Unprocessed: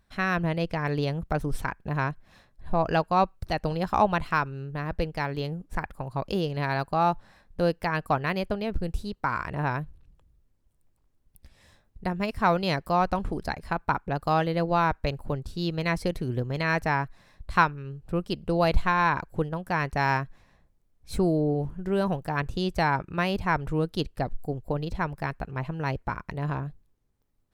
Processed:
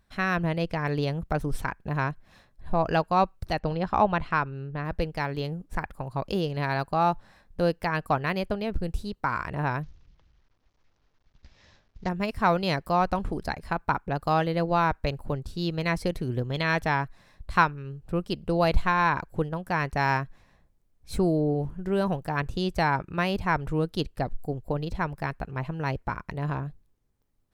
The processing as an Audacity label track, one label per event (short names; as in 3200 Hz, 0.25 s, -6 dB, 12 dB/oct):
3.590000	4.850000	Bessel low-pass 3600 Hz
9.830000	12.090000	CVSD 32 kbps
16.460000	17.010000	bell 3400 Hz +12.5 dB 0.25 oct